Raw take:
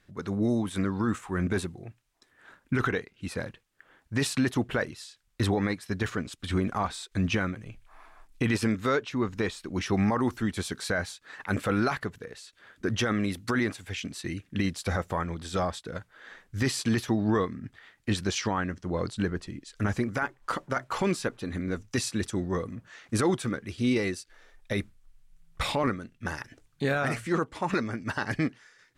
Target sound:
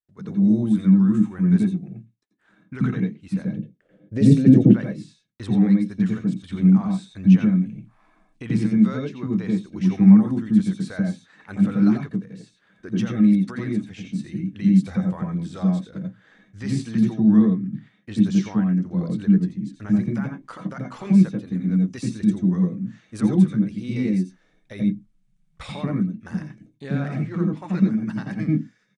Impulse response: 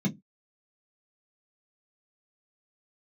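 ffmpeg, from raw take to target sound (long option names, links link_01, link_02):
-filter_complex "[0:a]agate=range=-29dB:threshold=-59dB:ratio=16:detection=peak,asettb=1/sr,asplit=3[link_01][link_02][link_03];[link_01]atrim=end=3.484[link_04];[link_02]atrim=start=3.48:end=4.66,asetpts=PTS-STARTPTS,afade=type=in:duration=0.004:curve=qsin,afade=type=out:start_time=1.176:duration=0.004:curve=qsin,lowshelf=frequency=720:width_type=q:width=3:gain=9.5[link_05];[link_03]atrim=start=4.656[link_06];[link_04][link_05]acrossfade=duration=0.004:curve1=hsin:curve2=qsin[link_07];[link_07][link_06]acrossfade=duration=0.004:curve1=qsin:curve2=hsin,asettb=1/sr,asplit=3[link_08][link_09][link_10];[link_08]atrim=end=26.874[link_11];[link_09]atrim=start=26.87:end=27.57,asetpts=PTS-STARTPTS,afade=type=in:duration=0.004:curve=qsin,afade=type=out:start_time=0.696:duration=0.004:curve=qsin,adynamicsmooth=sensitivity=5:basefreq=3700[link_12];[link_10]atrim=start=27.566[link_13];[link_11][link_12]acrossfade=duration=0.004:curve1=hsin:curve2=qsin[link_14];[link_14][link_13]acrossfade=duration=0.004:curve1=qsin:curve2=hsin,asplit=2[link_15][link_16];[1:a]atrim=start_sample=2205,adelay=84[link_17];[link_16][link_17]afir=irnorm=-1:irlink=0,volume=-5dB[link_18];[link_15][link_18]amix=inputs=2:normalize=0,aresample=22050,aresample=44100,volume=-9dB"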